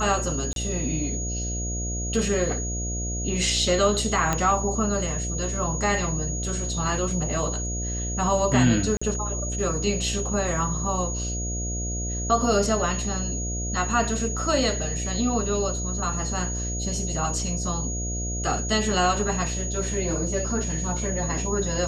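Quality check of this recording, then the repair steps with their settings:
mains buzz 60 Hz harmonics 12 −30 dBFS
whistle 6,700 Hz −31 dBFS
0:00.53–0:00.56: drop-out 32 ms
0:04.33: click −9 dBFS
0:08.97–0:09.02: drop-out 45 ms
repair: click removal
notch filter 6,700 Hz, Q 30
hum removal 60 Hz, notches 12
repair the gap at 0:00.53, 32 ms
repair the gap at 0:08.97, 45 ms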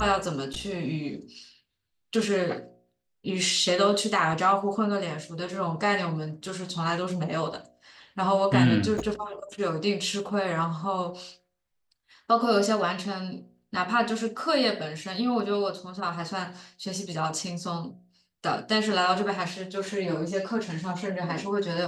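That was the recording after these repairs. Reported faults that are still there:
none of them is left

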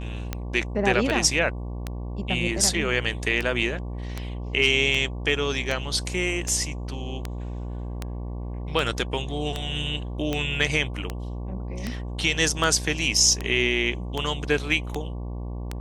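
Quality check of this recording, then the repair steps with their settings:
mains buzz 60 Hz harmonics 19 −32 dBFS
scratch tick 78 rpm −13 dBFS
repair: click removal
hum removal 60 Hz, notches 19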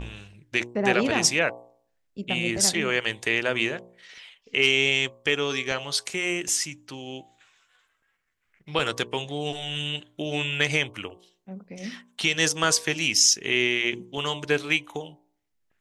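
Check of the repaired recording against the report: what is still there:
none of them is left

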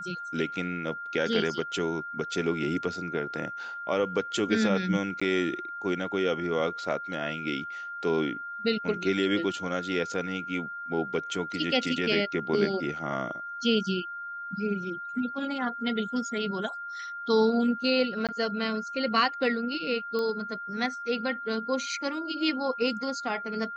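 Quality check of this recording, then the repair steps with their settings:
whistle 1,400 Hz −35 dBFS
0:05.20–0:05.21: drop-out 15 ms
0:18.27–0:18.29: drop-out 17 ms
0:20.19: click −20 dBFS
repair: click removal
notch filter 1,400 Hz, Q 30
repair the gap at 0:05.20, 15 ms
repair the gap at 0:18.27, 17 ms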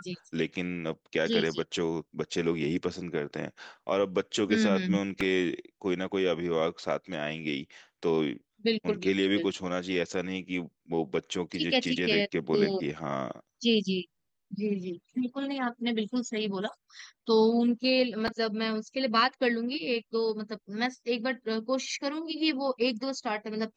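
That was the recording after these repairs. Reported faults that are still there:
none of them is left

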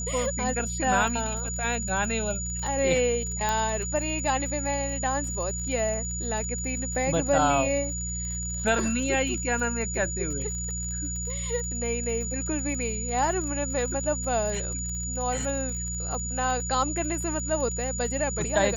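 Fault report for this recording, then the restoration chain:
surface crackle 48 per second −34 dBFS
mains hum 60 Hz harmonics 3 −34 dBFS
whistle 6,900 Hz −32 dBFS
0:03.49: click −12 dBFS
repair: click removal
hum removal 60 Hz, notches 3
notch filter 6,900 Hz, Q 30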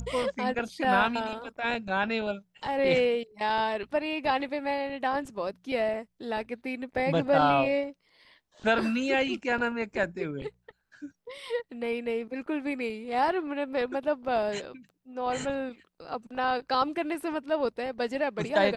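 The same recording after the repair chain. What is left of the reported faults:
none of them is left

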